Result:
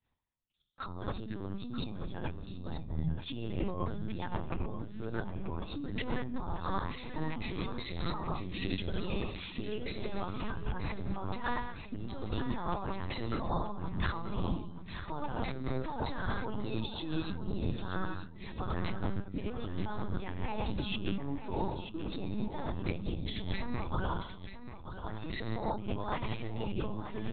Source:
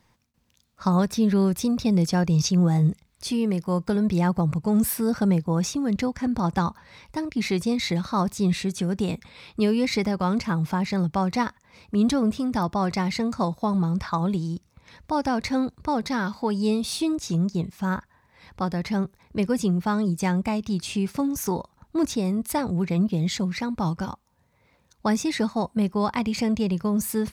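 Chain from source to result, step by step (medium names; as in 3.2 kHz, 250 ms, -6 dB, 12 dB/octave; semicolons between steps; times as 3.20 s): octave divider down 1 oct, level -2 dB; treble shelf 2.8 kHz +9.5 dB; band-stop 2.2 kHz, Q 8.4; reverb removal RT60 1.1 s; expander -49 dBFS; gated-style reverb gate 330 ms falling, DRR 3 dB; compressor with a negative ratio -29 dBFS, ratio -1; LPC vocoder at 8 kHz pitch kept; 10.60–11.33 s: distance through air 230 m; feedback delay 934 ms, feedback 18%, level -10.5 dB; trim -6.5 dB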